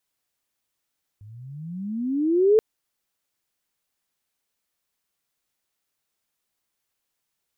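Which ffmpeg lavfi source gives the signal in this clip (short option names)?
-f lavfi -i "aevalsrc='pow(10,(-12+29.5*(t/1.38-1))/20)*sin(2*PI*99.9*1.38/(26*log(2)/12)*(exp(26*log(2)/12*t/1.38)-1))':d=1.38:s=44100"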